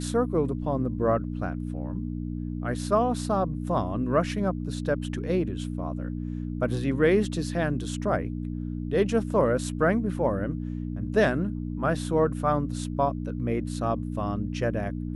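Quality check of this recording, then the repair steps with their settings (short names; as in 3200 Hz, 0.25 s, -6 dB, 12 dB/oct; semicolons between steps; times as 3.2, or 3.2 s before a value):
hum 60 Hz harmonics 5 -32 dBFS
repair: de-hum 60 Hz, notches 5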